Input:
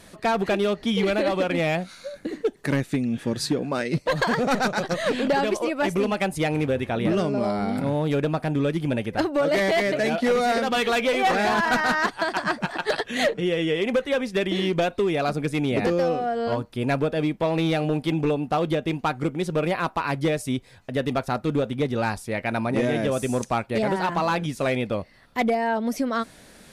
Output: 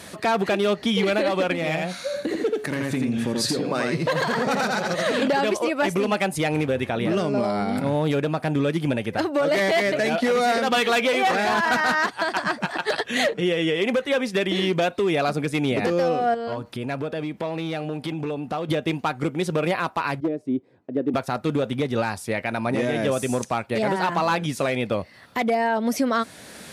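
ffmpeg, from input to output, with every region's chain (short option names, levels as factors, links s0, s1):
-filter_complex "[0:a]asettb=1/sr,asplit=3[s0][s1][s2];[s0]atrim=end=1.534[s3];[s1]atrim=start=1.53:end=5.22,asetpts=PTS-STARTPTS,afade=t=in:d=0.004:c=qsin,afade=t=out:st=3.686:d=0.004:c=qsin,bandreject=f=141.5:t=h:w=4,bandreject=f=283:t=h:w=4,bandreject=f=424.5:t=h:w=4,bandreject=f=566:t=h:w=4,bandreject=f=707.5:t=h:w=4,bandreject=f=849:t=h:w=4,bandreject=f=990.5:t=h:w=4,bandreject=f=1132:t=h:w=4,bandreject=f=1273.5:t=h:w=4,bandreject=f=1415:t=h:w=4,bandreject=f=1556.5:t=h:w=4,bandreject=f=1698:t=h:w=4,bandreject=f=1839.5:t=h:w=4,bandreject=f=1981:t=h:w=4,bandreject=f=2122.5:t=h:w=4,bandreject=f=2264:t=h:w=4,bandreject=f=2405.5:t=h:w=4,bandreject=f=2547:t=h:w=4,bandreject=f=2688.5:t=h:w=4,bandreject=f=2830:t=h:w=4,bandreject=f=2971.5:t=h:w=4,bandreject=f=3113:t=h:w=4,bandreject=f=3254.5:t=h:w=4,bandreject=f=3396:t=h:w=4,bandreject=f=3537.5:t=h:w=4,bandreject=f=3679:t=h:w=4,bandreject=f=3820.5:t=h:w=4,bandreject=f=3962:t=h:w=4,bandreject=f=4103.5:t=h:w=4,bandreject=f=4245:t=h:w=4,bandreject=f=4386.5:t=h:w=4,bandreject=f=4528:t=h:w=4,bandreject=f=4669.5:t=h:w=4,bandreject=f=4811:t=h:w=4,bandreject=f=4952.5:t=h:w=4,bandreject=f=5094:t=h:w=4,aecho=1:1:83:0.631,atrim=end_sample=162729,acompressor=threshold=0.0398:ratio=3:attack=3.2:release=140:knee=1:detection=peak[s4];[s2]atrim=start=5.216[s5];[s3][s4]acrossfade=d=0.004:c1=hsin:c2=qsin[s6];[s6][s5]acrossfade=d=0.004:c1=qsin:c2=hsin,asettb=1/sr,asplit=3[s7][s8][s9];[s7]atrim=end=16.344[s10];[s8]atrim=start=16.34:end=18.69,asetpts=PTS-STARTPTS,afade=t=in:d=0.004:c=qsin,afade=t=out:st=2.346:d=0.004:c=qsin,acompressor=threshold=0.02:ratio=4:attack=3.2:release=140:knee=1:detection=peak,highshelf=f=5300:g=-4[s11];[s9]atrim=start=18.686[s12];[s10][s11]acrossfade=d=0.004:c1=hsin:c2=qsin[s13];[s13][s12]acrossfade=d=0.004:c1=qsin:c2=hsin,asettb=1/sr,asplit=3[s14][s15][s16];[s14]atrim=end=20.204[s17];[s15]atrim=start=20.2:end=21.14,asetpts=PTS-STARTPTS,afade=t=in:d=0.004:c=qsin,afade=t=out:st=0.936:d=0.004:c=qsin,bandpass=f=320:t=q:w=2.7,aeval=exprs='clip(val(0),-1,0.075)':c=same[s18];[s16]atrim=start=21.136[s19];[s17][s18]acrossfade=d=0.004:c1=hsin:c2=qsin[s20];[s20][s19]acrossfade=d=0.004:c1=qsin:c2=hsin,highpass=f=71:w=0.5412,highpass=f=71:w=1.3066,lowshelf=f=450:g=-3.5,alimiter=limit=0.0794:level=0:latency=1:release=407,volume=2.82"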